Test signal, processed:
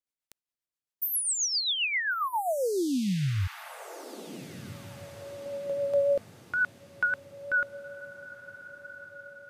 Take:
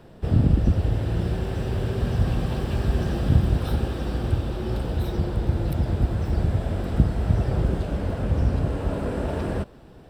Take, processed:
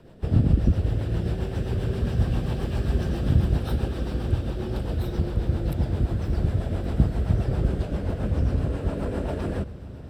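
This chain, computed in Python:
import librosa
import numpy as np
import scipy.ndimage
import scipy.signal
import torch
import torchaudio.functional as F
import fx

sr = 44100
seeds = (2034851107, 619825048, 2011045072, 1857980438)

p1 = fx.rotary(x, sr, hz=7.5)
y = p1 + fx.echo_diffused(p1, sr, ms=1472, feedback_pct=44, wet_db=-15.0, dry=0)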